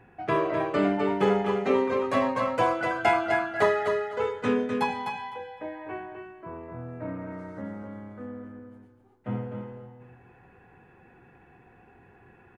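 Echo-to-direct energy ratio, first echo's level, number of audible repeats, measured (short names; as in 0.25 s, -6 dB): -6.0 dB, -6.0 dB, 2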